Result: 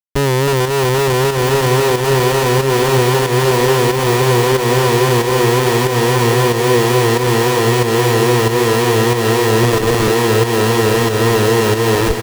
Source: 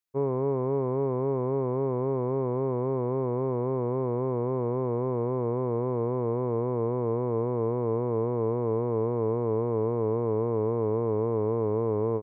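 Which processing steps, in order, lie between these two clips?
fade out at the end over 0.59 s; level rider gain up to 13 dB; crossover distortion -42.5 dBFS; 9.63–10.08 s: band-pass filter 2.1 kHz, Q 0.63; bit crusher 7-bit; speakerphone echo 320 ms, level -22 dB; Schmitt trigger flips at -27.5 dBFS; echo that smears into a reverb 1282 ms, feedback 61%, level -6.5 dB; volume shaper 92 bpm, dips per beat 1, -7 dB, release 206 ms; trim +2 dB

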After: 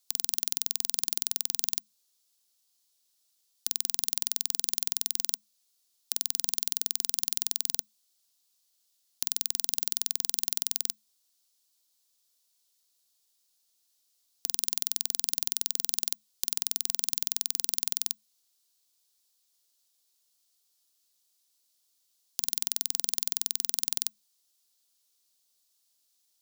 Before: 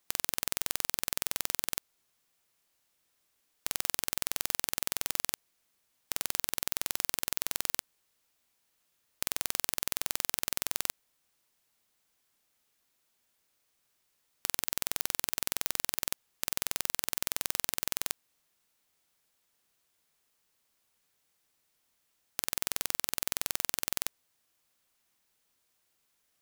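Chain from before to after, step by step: frequency shift +210 Hz; resonant high shelf 3 kHz +12 dB, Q 1.5; trim -9 dB

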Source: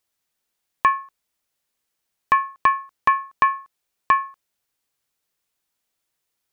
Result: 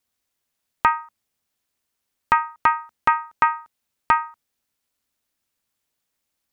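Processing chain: peaking EQ 68 Hz +8 dB 1.5 oct; ring modulator 160 Hz; trim +2.5 dB

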